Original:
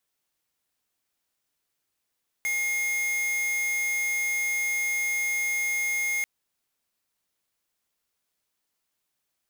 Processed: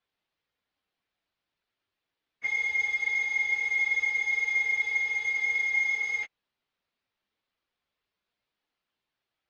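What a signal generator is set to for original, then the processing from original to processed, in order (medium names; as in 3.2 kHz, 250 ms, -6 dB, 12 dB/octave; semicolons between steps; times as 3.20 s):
tone square 2.14 kHz -27 dBFS 3.79 s
phase randomisation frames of 50 ms; low-pass 4.1 kHz 24 dB/octave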